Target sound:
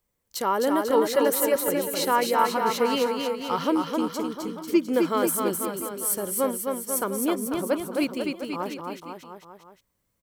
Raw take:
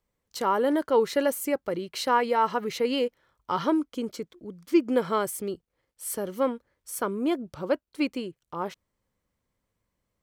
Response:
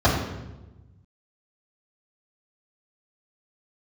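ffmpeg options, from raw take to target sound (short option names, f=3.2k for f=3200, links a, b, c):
-filter_complex "[0:a]highshelf=f=7.6k:g=11.5,asplit=2[a][b];[b]aecho=0:1:260|494|704.6|894.1|1065:0.631|0.398|0.251|0.158|0.1[c];[a][c]amix=inputs=2:normalize=0"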